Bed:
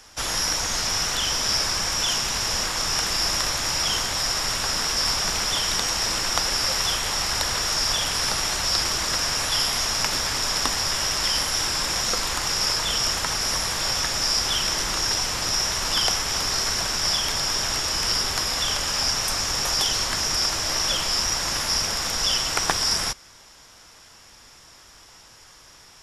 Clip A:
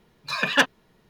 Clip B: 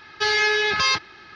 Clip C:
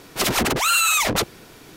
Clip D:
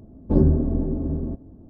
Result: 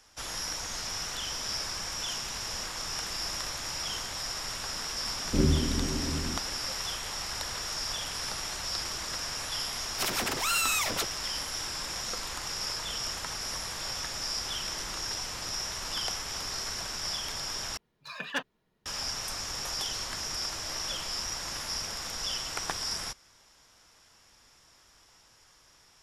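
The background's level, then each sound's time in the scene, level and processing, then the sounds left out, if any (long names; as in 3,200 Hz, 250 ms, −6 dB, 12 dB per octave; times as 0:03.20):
bed −11 dB
0:05.03: mix in D −7.5 dB + Butterworth band-reject 830 Hz, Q 1.5
0:09.81: mix in C −9.5 dB + low-shelf EQ 450 Hz −7.5 dB
0:17.77: overwrite with A −14 dB
not used: B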